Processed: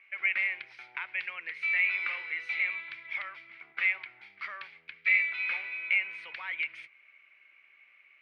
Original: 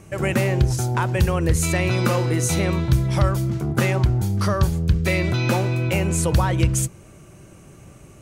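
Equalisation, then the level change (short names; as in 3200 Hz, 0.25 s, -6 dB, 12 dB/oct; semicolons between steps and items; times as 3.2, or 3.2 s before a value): polynomial smoothing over 15 samples; resonant high-pass 2200 Hz, resonance Q 9.7; air absorption 420 m; -7.0 dB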